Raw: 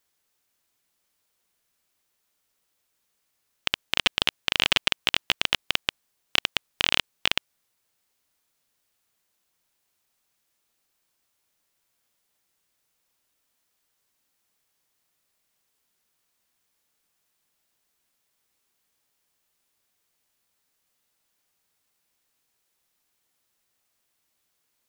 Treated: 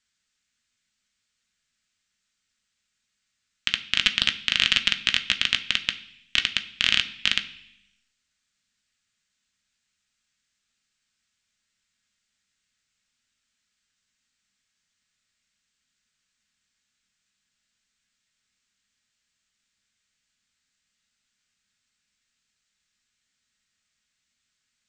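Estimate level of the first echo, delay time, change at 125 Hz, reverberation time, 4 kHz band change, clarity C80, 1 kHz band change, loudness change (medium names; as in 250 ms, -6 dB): no echo, no echo, -0.5 dB, 0.65 s, +2.0 dB, 17.5 dB, -5.5 dB, +2.0 dB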